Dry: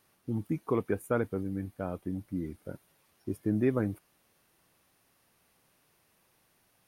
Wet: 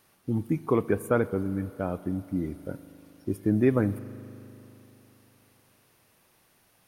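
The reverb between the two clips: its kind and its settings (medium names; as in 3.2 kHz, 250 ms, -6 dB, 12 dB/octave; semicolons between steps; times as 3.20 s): spring tank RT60 3.3 s, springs 39 ms, chirp 30 ms, DRR 15.5 dB; trim +5 dB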